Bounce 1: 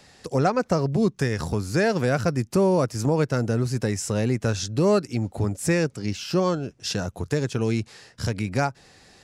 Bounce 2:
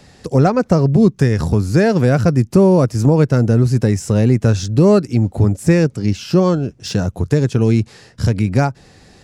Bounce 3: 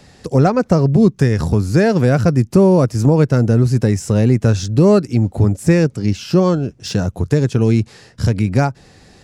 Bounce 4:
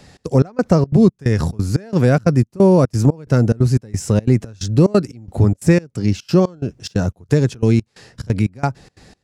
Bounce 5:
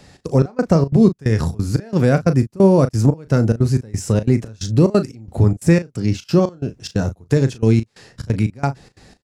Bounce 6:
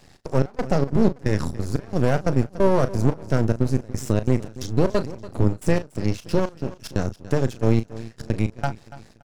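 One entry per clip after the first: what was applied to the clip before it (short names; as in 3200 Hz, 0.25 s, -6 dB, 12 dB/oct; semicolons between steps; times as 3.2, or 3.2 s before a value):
de-esser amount 55%; low shelf 440 Hz +9.5 dB; gain +3 dB
nothing audible
step gate "xx.xx..x" 179 bpm -24 dB
doubler 36 ms -11.5 dB; gain -1 dB
feedback echo 0.286 s, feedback 38%, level -16.5 dB; half-wave rectifier; gain -2 dB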